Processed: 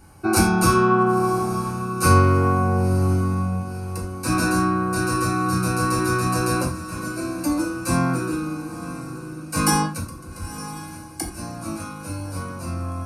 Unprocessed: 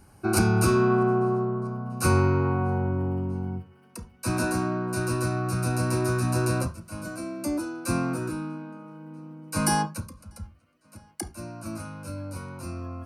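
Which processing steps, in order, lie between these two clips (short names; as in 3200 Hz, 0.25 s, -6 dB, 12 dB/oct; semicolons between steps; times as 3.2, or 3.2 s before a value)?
diffused feedback echo 0.99 s, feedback 49%, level -13 dB; non-linear reverb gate 0.11 s falling, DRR 0 dB; gain +3 dB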